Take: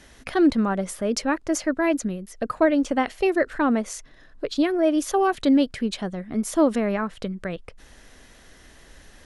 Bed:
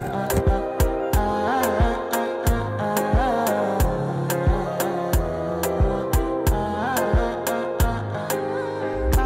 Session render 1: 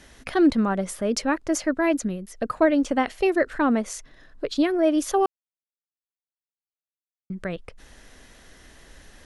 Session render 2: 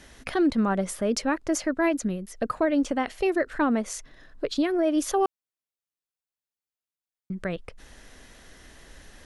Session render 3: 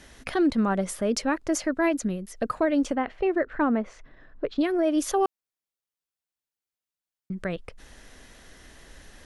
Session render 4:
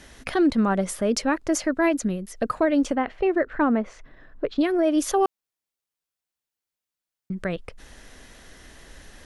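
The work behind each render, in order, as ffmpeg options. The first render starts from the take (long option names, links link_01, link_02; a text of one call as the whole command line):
ffmpeg -i in.wav -filter_complex "[0:a]asplit=3[link_01][link_02][link_03];[link_01]atrim=end=5.26,asetpts=PTS-STARTPTS,afade=type=out:start_time=5.256:duration=0.004:curve=hsin[link_04];[link_02]atrim=start=5.26:end=7.3,asetpts=PTS-STARTPTS,volume=0[link_05];[link_03]atrim=start=7.3,asetpts=PTS-STARTPTS,afade=type=in:duration=0.004:curve=hsin[link_06];[link_04][link_05][link_06]concat=n=3:v=0:a=1" out.wav
ffmpeg -i in.wav -af "alimiter=limit=-15.5dB:level=0:latency=1:release=189" out.wav
ffmpeg -i in.wav -filter_complex "[0:a]asettb=1/sr,asplit=3[link_01][link_02][link_03];[link_01]atrim=end=2.954[link_04];[link_02]atrim=start=2.95:end=4.61,asetpts=PTS-STARTPTS,afade=type=in:duration=0.004:curve=qsin,afade=type=out:start_time=1.656:duration=0.004:curve=qsin,lowpass=2100[link_05];[link_03]atrim=start=4.606[link_06];[link_04][link_05]acrossfade=duration=0.004:curve1=hsin:curve2=qsin[link_07];[link_07][link_06]acrossfade=duration=0.004:curve1=qsin:curve2=hsin" out.wav
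ffmpeg -i in.wav -af "volume=2.5dB" out.wav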